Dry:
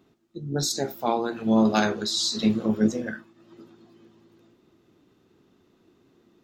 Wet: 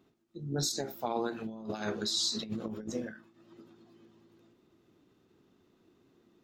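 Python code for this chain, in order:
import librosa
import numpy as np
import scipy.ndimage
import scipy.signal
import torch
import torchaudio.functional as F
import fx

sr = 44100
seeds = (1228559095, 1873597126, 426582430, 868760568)

y = fx.over_compress(x, sr, threshold_db=-25.0, ratio=-0.5)
y = fx.end_taper(y, sr, db_per_s=120.0)
y = F.gain(torch.from_numpy(y), -7.5).numpy()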